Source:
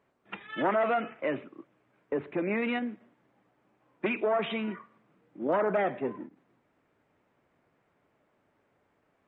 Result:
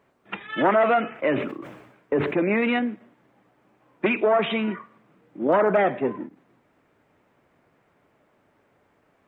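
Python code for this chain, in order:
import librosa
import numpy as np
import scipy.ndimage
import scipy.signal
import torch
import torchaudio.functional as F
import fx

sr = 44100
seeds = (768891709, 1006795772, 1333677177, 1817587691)

y = fx.sustainer(x, sr, db_per_s=60.0, at=(1.1, 2.86))
y = y * librosa.db_to_amplitude(7.5)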